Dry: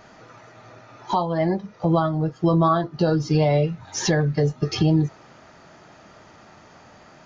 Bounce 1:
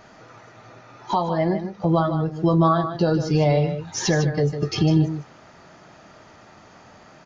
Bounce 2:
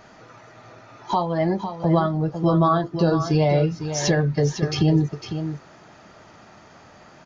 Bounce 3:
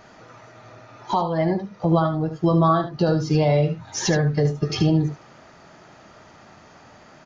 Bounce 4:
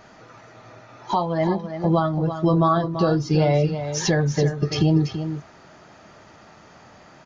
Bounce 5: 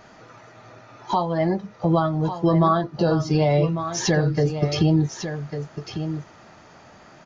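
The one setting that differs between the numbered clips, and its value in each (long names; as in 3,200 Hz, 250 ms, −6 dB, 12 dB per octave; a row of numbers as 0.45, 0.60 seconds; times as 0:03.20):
single-tap delay, delay time: 152, 503, 74, 335, 1,149 milliseconds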